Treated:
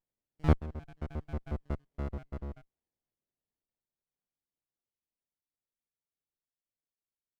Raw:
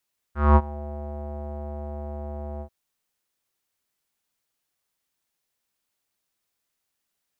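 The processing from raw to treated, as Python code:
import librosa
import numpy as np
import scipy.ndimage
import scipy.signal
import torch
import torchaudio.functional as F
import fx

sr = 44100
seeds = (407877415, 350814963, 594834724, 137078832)

y = fx.spec_dropout(x, sr, seeds[0], share_pct=71)
y = fx.doppler_pass(y, sr, speed_mps=17, closest_m=7.4, pass_at_s=1.56)
y = fx.running_max(y, sr, window=33)
y = y * 10.0 ** (4.0 / 20.0)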